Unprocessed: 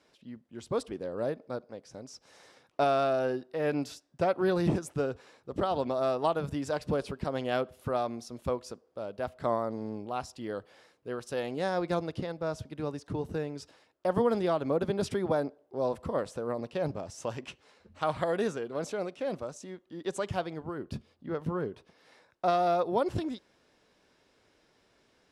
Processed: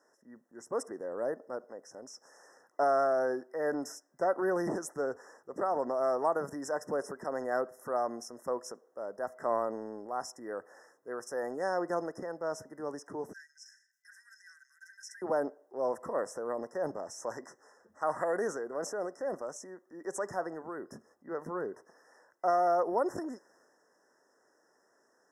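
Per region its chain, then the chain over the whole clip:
13.33–15.22 rippled Chebyshev high-pass 1500 Hz, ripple 9 dB + sustainer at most 120 dB/s
whole clip: HPF 370 Hz 12 dB/oct; transient shaper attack -2 dB, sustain +4 dB; FFT band-reject 2000–5100 Hz

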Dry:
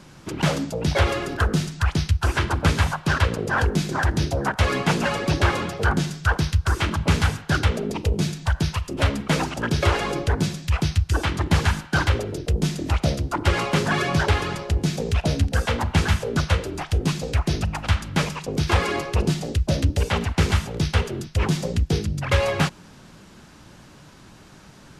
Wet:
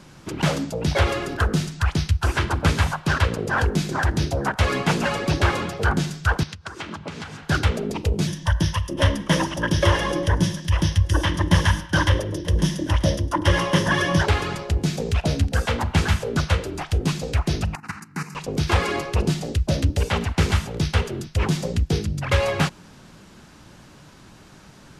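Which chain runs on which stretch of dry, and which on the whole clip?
6.43–7.43 compressor 10:1, threshold -27 dBFS + BPF 150–7100 Hz
8.27–14.22 ripple EQ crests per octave 1.2, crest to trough 11 dB + echo 0.935 s -20.5 dB
17.75–18.35 HPF 150 Hz 24 dB/oct + level quantiser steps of 12 dB + fixed phaser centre 1400 Hz, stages 4
whole clip: dry

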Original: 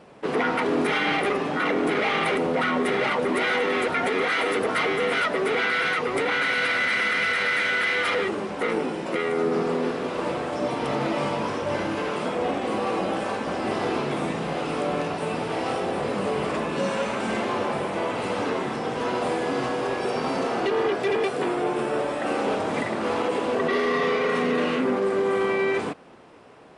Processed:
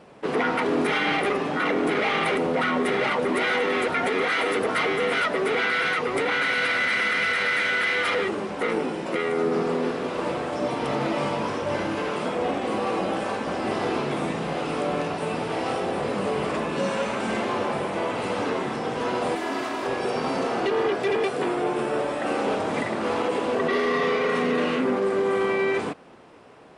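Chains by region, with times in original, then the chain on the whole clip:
19.35–19.86 minimum comb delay 3 ms + HPF 200 Hz
whole clip: dry

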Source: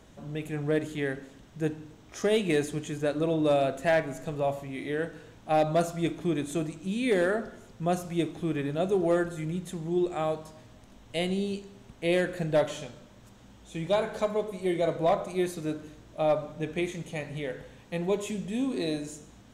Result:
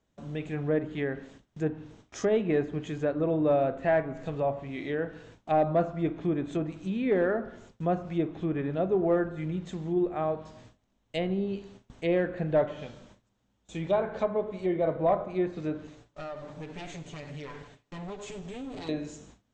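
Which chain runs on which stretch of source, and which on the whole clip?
15.87–18.89 minimum comb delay 6.9 ms + compressor 4:1, threshold -37 dBFS
whole clip: gate with hold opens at -40 dBFS; treble ducked by the level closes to 1600 Hz, closed at -25.5 dBFS; steep low-pass 8200 Hz 96 dB/oct

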